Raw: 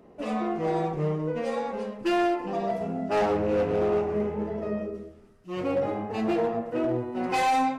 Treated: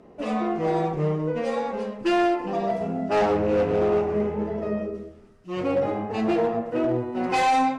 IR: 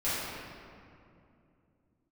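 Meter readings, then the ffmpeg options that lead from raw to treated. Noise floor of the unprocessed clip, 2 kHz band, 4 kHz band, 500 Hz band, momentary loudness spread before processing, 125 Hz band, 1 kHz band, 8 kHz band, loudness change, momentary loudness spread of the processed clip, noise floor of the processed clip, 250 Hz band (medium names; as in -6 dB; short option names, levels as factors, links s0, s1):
-52 dBFS, +3.0 dB, +3.0 dB, +3.0 dB, 8 LU, +3.0 dB, +3.0 dB, no reading, +3.0 dB, 8 LU, -49 dBFS, +3.0 dB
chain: -af "lowpass=9300,volume=1.41"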